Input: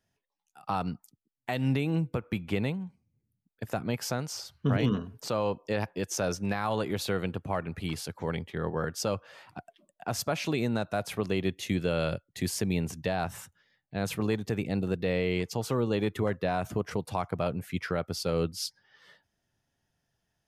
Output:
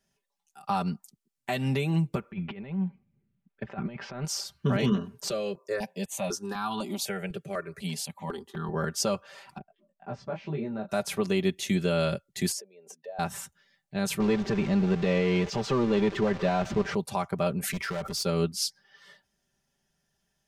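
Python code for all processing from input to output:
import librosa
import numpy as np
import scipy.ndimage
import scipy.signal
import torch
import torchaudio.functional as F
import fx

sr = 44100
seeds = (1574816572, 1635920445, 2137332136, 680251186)

y = fx.chain(x, sr, fx.lowpass(hz=2800.0, slope=24),
    fx.over_compress(threshold_db=-35.0, ratio=-0.5), at=(2.31, 4.25))
y = fx.chain(y, sr, fx.highpass(hz=140.0, slope=12),
    fx.phaser_held(hz=4.0, low_hz=250.0, high_hz=2000.0), at=(5.3, 8.69))
y = fx.chain(y, sr, fx.spacing_loss(db_at_10k=45),
    fx.detune_double(cents=11), at=(9.58, 10.89))
y = fx.chain(y, sr, fx.spec_expand(power=1.5),
    fx.over_compress(threshold_db=-34.0, ratio=-1.0),
    fx.ladder_highpass(hz=470.0, resonance_pct=70), at=(12.52, 13.19))
y = fx.chain(y, sr, fx.zero_step(step_db=-32.0),
    fx.air_absorb(metres=170.0), at=(14.2, 16.95))
y = fx.chain(y, sr, fx.clip_hard(threshold_db=-31.5),
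    fx.pre_swell(db_per_s=28.0), at=(17.6, 18.23))
y = fx.peak_eq(y, sr, hz=7600.0, db=5.0, octaves=1.5)
y = y + 0.74 * np.pad(y, (int(5.1 * sr / 1000.0), 0))[:len(y)]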